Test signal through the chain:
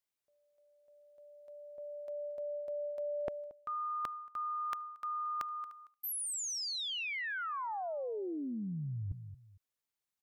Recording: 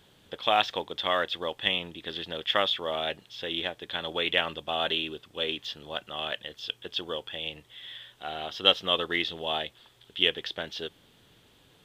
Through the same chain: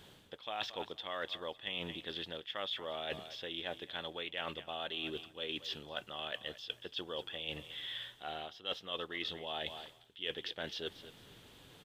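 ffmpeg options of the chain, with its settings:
-af "aecho=1:1:228|456:0.0944|0.0245,areverse,acompressor=threshold=0.01:ratio=6,areverse,volume=1.26"

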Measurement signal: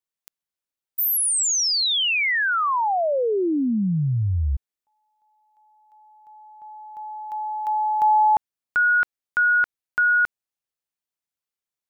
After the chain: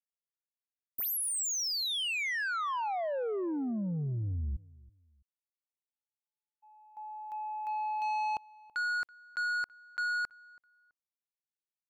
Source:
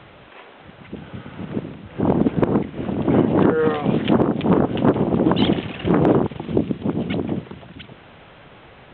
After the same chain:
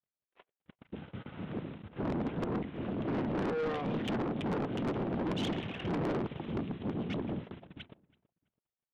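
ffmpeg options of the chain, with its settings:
-filter_complex "[0:a]agate=range=0.00178:threshold=0.00891:ratio=16:release=55:detection=peak,asoftclip=type=tanh:threshold=0.0841,asplit=2[s0][s1];[s1]adelay=329,lowpass=f=2100:p=1,volume=0.0794,asplit=2[s2][s3];[s3]adelay=329,lowpass=f=2100:p=1,volume=0.28[s4];[s2][s4]amix=inputs=2:normalize=0[s5];[s0][s5]amix=inputs=2:normalize=0,volume=0.376"

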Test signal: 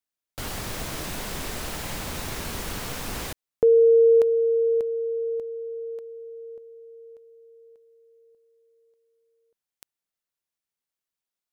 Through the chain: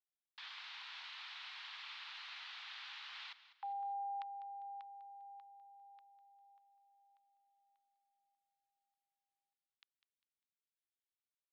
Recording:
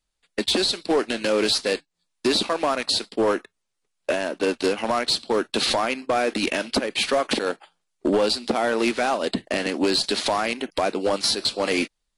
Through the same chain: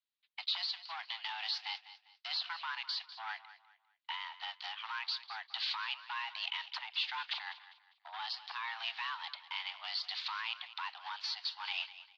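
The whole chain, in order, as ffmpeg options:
-af "highpass=f=520:t=q:w=0.5412,highpass=f=520:t=q:w=1.307,lowpass=f=3600:t=q:w=0.5176,lowpass=f=3600:t=q:w=0.7071,lowpass=f=3600:t=q:w=1.932,afreqshift=340,aderivative,aecho=1:1:200|400|600:0.178|0.0587|0.0194,volume=0.794"

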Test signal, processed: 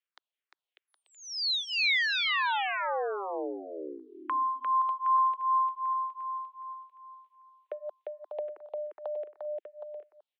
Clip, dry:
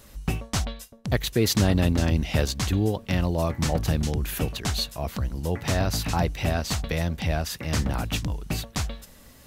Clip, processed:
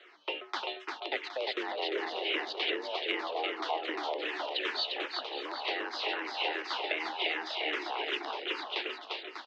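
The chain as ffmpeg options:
-filter_complex "[0:a]highpass=f=210:t=q:w=0.5412,highpass=f=210:t=q:w=1.307,lowpass=f=3400:t=q:w=0.5176,lowpass=f=3400:t=q:w=0.7071,lowpass=f=3400:t=q:w=1.932,afreqshift=150,acompressor=threshold=0.0282:ratio=4,aemphasis=mode=production:type=riaa,aecho=1:1:350|595|766.5|886.6|970.6:0.631|0.398|0.251|0.158|0.1,asplit=2[s0][s1];[s1]afreqshift=-2.6[s2];[s0][s2]amix=inputs=2:normalize=1,volume=1.26"

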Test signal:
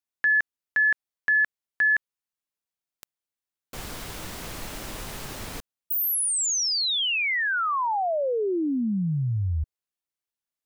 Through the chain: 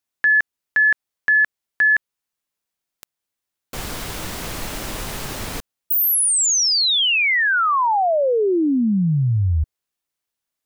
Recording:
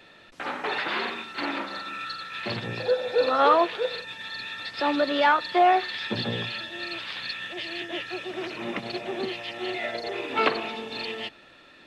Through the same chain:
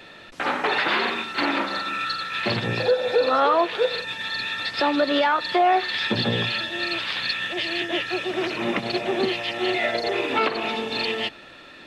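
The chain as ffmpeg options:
-af "alimiter=limit=0.112:level=0:latency=1:release=224,volume=2.37"

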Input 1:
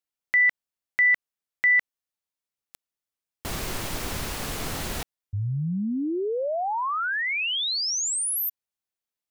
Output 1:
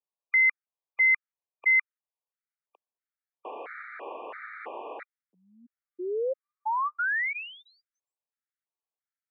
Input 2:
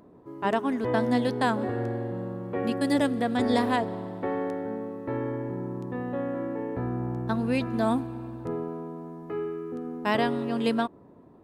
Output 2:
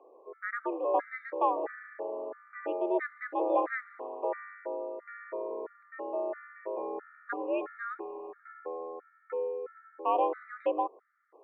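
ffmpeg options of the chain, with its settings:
-af "highpass=f=330:t=q:w=0.5412,highpass=f=330:t=q:w=1.307,lowpass=f=2100:t=q:w=0.5176,lowpass=f=2100:t=q:w=0.7071,lowpass=f=2100:t=q:w=1.932,afreqshift=81,afftfilt=real='re*gt(sin(2*PI*1.5*pts/sr)*(1-2*mod(floor(b*sr/1024/1200),2)),0)':imag='im*gt(sin(2*PI*1.5*pts/sr)*(1-2*mod(floor(b*sr/1024/1200),2)),0)':win_size=1024:overlap=0.75"

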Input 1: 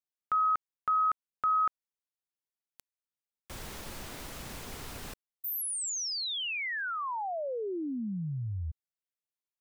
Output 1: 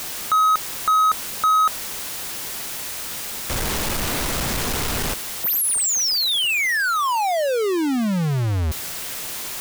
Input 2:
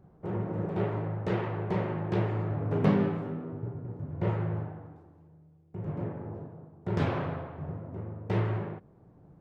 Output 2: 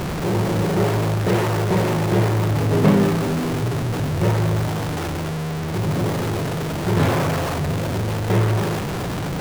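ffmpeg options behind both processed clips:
-af "aeval=exprs='val(0)+0.5*0.0473*sgn(val(0))':c=same,volume=2.24"

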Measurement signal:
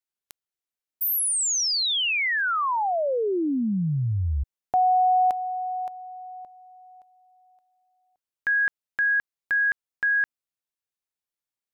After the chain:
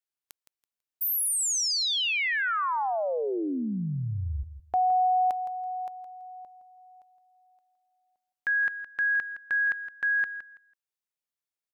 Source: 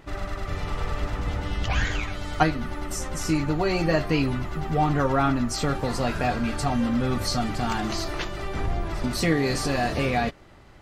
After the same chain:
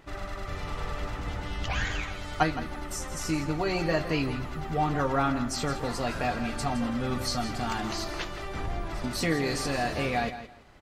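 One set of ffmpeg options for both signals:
-filter_complex "[0:a]lowshelf=f=390:g=-3.5,asplit=2[s0][s1];[s1]aecho=0:1:165|330|495:0.251|0.0527|0.0111[s2];[s0][s2]amix=inputs=2:normalize=0,volume=0.708"

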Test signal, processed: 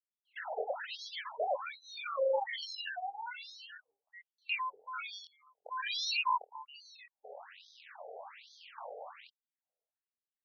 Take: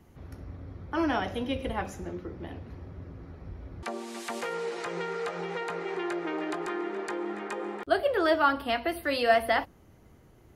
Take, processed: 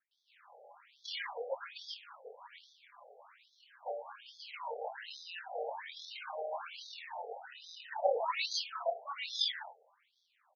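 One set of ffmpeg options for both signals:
-filter_complex "[0:a]asubboost=boost=5:cutoff=76,acrusher=samples=31:mix=1:aa=0.000001:lfo=1:lforange=18.6:lforate=0.43,acrossover=split=310|1300[s0][s1][s2];[s0]adelay=50[s3];[s2]adelay=110[s4];[s3][s1][s4]amix=inputs=3:normalize=0,adynamicequalizer=threshold=0.00355:dfrequency=4200:dqfactor=1.4:tfrequency=4200:tqfactor=1.4:attack=5:release=100:ratio=0.375:range=1.5:mode=boostabove:tftype=bell,adynamicsmooth=sensitivity=2.5:basefreq=4500,asplit=2[s5][s6];[s6]adelay=24,volume=0.708[s7];[s5][s7]amix=inputs=2:normalize=0,afftfilt=real='re*between(b*sr/1024,570*pow(4700/570,0.5+0.5*sin(2*PI*1.2*pts/sr))/1.41,570*pow(4700/570,0.5+0.5*sin(2*PI*1.2*pts/sr))*1.41)':imag='im*between(b*sr/1024,570*pow(4700/570,0.5+0.5*sin(2*PI*1.2*pts/sr))/1.41,570*pow(4700/570,0.5+0.5*sin(2*PI*1.2*pts/sr))*1.41)':win_size=1024:overlap=0.75"

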